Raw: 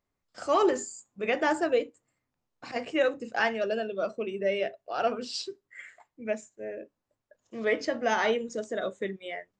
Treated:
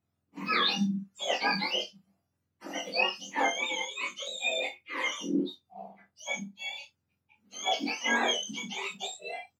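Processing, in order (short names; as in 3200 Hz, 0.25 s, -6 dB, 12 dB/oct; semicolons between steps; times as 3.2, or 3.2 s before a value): spectrum mirrored in octaves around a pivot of 1200 Hz; early reflections 25 ms -4 dB, 60 ms -17.5 dB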